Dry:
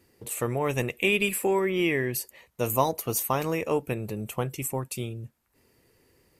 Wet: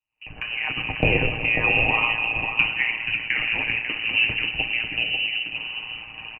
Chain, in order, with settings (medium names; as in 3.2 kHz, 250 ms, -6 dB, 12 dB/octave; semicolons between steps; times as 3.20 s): recorder AGC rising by 54 dB/s; simulated room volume 220 m³, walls hard, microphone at 0.35 m; ring modulator 57 Hz; frequency inversion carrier 2.9 kHz; resonant low shelf 140 Hz +8.5 dB, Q 1.5; comb 6.5 ms, depth 44%; small resonant body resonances 240/790 Hz, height 8 dB; on a send: delay 544 ms -6 dB; on the sum: three bands expanded up and down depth 70%